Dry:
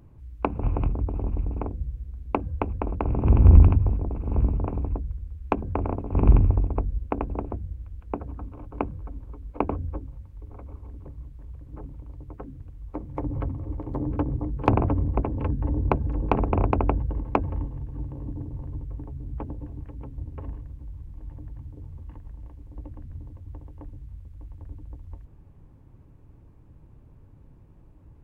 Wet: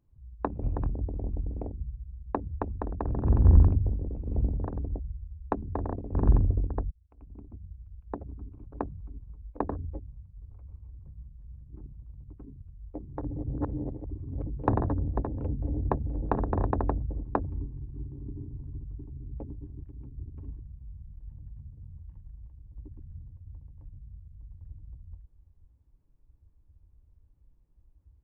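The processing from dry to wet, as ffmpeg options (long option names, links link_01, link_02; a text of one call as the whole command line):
ffmpeg -i in.wav -filter_complex "[0:a]asplit=4[link_01][link_02][link_03][link_04];[link_01]atrim=end=6.91,asetpts=PTS-STARTPTS,afade=type=out:start_time=6.906:duration=0.004:curve=hsin[link_05];[link_02]atrim=start=6.91:end=13.372,asetpts=PTS-STARTPTS,afade=type=in:duration=1.33[link_06];[link_03]atrim=start=13.368:end=14.472,asetpts=PTS-STARTPTS,areverse[link_07];[link_04]atrim=start=14.468[link_08];[link_05][link_06]concat=n=2:v=0:a=1[link_09];[link_09][link_07]acrossfade=duration=0.004:curve1=hsin:curve2=hsin[link_10];[link_10][link_08]acrossfade=duration=0.004:curve1=hsin:curve2=hsin,afwtdn=0.0251,volume=-5dB" out.wav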